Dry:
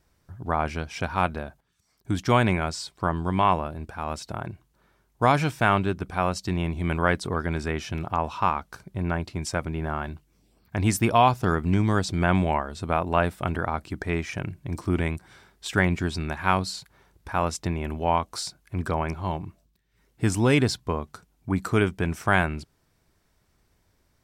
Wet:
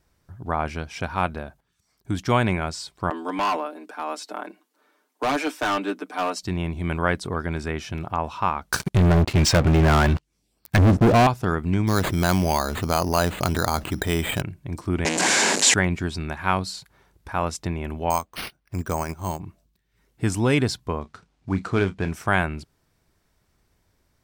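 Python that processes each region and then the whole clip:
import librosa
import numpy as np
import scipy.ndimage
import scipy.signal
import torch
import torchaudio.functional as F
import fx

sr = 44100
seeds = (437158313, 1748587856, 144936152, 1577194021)

y = fx.chain(x, sr, fx.steep_highpass(hz=210.0, slope=96),
    fx.comb(ms=6.7, depth=0.76),
    fx.clip_hard(threshold_db=-19.0), at=(3.1, 6.43))
y = fx.chain(y, sr, fx.env_lowpass_down(base_hz=500.0, full_db=-21.0),
    fx.high_shelf(hz=2600.0, db=9.5),
    fx.leveller(passes=5), at=(8.72, 11.27))
y = fx.chain(y, sr, fx.resample_bad(factor=8, down='none', up='hold'),
    fx.env_flatten(amount_pct=50), at=(11.87, 14.42))
y = fx.chain(y, sr, fx.zero_step(step_db=-29.5),
    fx.leveller(passes=5),
    fx.cabinet(low_hz=230.0, low_slope=24, high_hz=8600.0, hz=(360.0, 1300.0, 3500.0, 7100.0), db=(-4, -9, -5, 8)), at=(15.05, 15.74))
y = fx.chain(y, sr, fx.lowpass(hz=10000.0, slope=24),
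    fx.transient(attack_db=1, sustain_db=-8),
    fx.resample_bad(factor=6, down='none', up='hold'), at=(18.1, 19.4))
y = fx.chain(y, sr, fx.cvsd(bps=64000),
    fx.lowpass(hz=5400.0, slope=12),
    fx.doubler(ms=31.0, db=-12.5), at=(21.01, 22.12))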